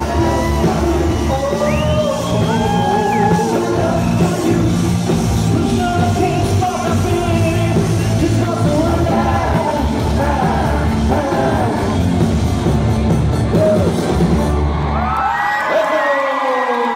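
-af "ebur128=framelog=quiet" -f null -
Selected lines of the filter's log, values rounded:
Integrated loudness:
  I:         -15.4 LUFS
  Threshold: -25.4 LUFS
Loudness range:
  LRA:         0.6 LU
  Threshold: -35.3 LUFS
  LRA low:   -15.6 LUFS
  LRA high:  -15.1 LUFS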